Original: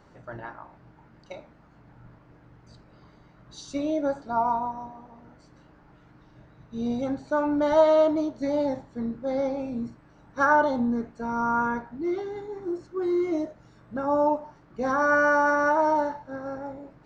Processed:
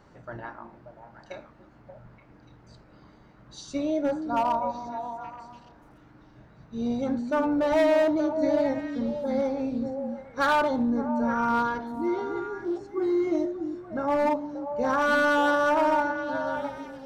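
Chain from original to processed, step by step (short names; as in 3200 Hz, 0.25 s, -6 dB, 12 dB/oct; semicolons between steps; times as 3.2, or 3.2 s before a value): overloaded stage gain 19 dB; delay with a stepping band-pass 0.291 s, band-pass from 240 Hz, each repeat 1.4 oct, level -3.5 dB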